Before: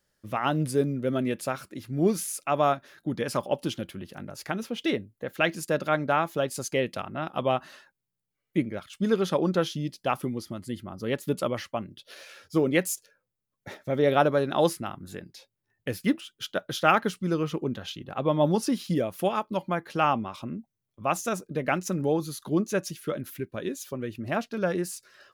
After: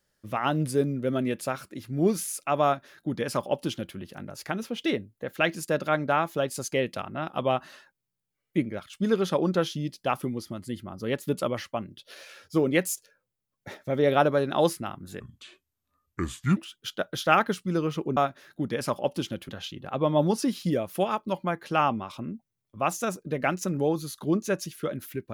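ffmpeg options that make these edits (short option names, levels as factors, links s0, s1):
-filter_complex "[0:a]asplit=5[s0][s1][s2][s3][s4];[s0]atrim=end=15.204[s5];[s1]atrim=start=15.2:end=16.13,asetpts=PTS-STARTPTS,asetrate=29988,aresample=44100,atrim=end_sample=60313,asetpts=PTS-STARTPTS[s6];[s2]atrim=start=16.126:end=17.732[s7];[s3]atrim=start=2.638:end=3.962[s8];[s4]atrim=start=17.728[s9];[s5][s6]acrossfade=d=0.004:c1=hsin:c2=hsin[s10];[s10][s7]acrossfade=d=0.004:c1=hsin:c2=hsin[s11];[s11][s8]acrossfade=d=0.004:c1=hsin:c2=hsin[s12];[s12][s9]acrossfade=d=0.004:c1=hsin:c2=hsin"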